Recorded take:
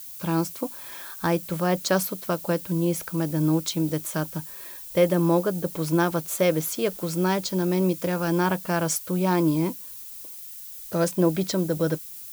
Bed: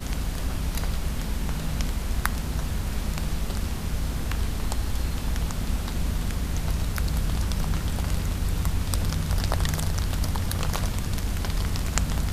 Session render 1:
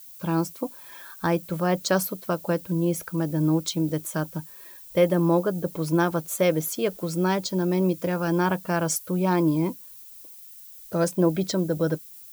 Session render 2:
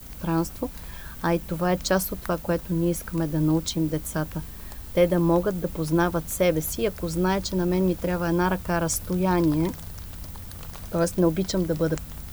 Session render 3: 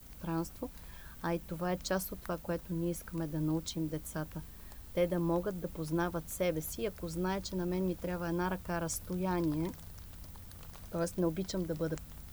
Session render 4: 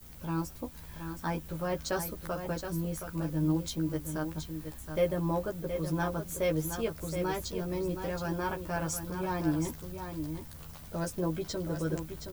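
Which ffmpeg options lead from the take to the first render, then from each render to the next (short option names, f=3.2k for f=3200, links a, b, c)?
-af "afftdn=nr=7:nf=-40"
-filter_complex "[1:a]volume=-13dB[a];[0:a][a]amix=inputs=2:normalize=0"
-af "volume=-11dB"
-filter_complex "[0:a]asplit=2[a][b];[b]adelay=13,volume=-2dB[c];[a][c]amix=inputs=2:normalize=0,asplit=2[d][e];[e]aecho=0:1:721:0.398[f];[d][f]amix=inputs=2:normalize=0"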